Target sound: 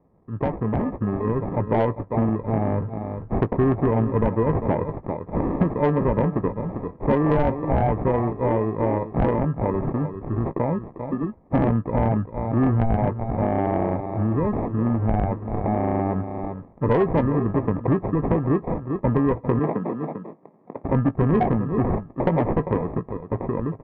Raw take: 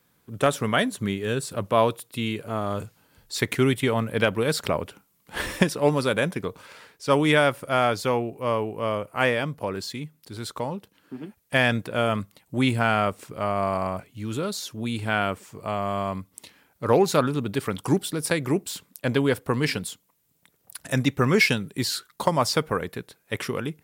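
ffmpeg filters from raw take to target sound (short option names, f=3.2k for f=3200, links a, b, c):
-filter_complex "[0:a]aecho=1:1:396:0.188,acrusher=samples=30:mix=1:aa=0.000001,lowpass=f=1.3k:w=0.5412,lowpass=f=1.3k:w=1.3066,equalizer=f=950:w=0.53:g=-4,asoftclip=type=tanh:threshold=-16.5dB,dynaudnorm=f=170:g=17:m=9dB,asplit=2[a][b];[b]adelay=18,volume=-13dB[c];[a][c]amix=inputs=2:normalize=0,acompressor=threshold=-28dB:ratio=2.5,asettb=1/sr,asplit=3[d][e][f];[d]atrim=end=19.594[g];[e]atrim=start=19.59:end=20.84,asetpts=PTS-STARTPTS,afade=t=in:d=0.004:c=qsin,afade=t=out:st=1.246:d=0.004:c=qsin,highpass=f=160:w=0.5412,highpass=f=160:w=1.3066[h];[f]atrim=start=20.836[i];[g][h]acrossfade=d=0.004:c1=hsin:c2=qsin[j];[j][i]acrossfade=d=0.004:c1=qsin:c2=hsin,volume=6dB"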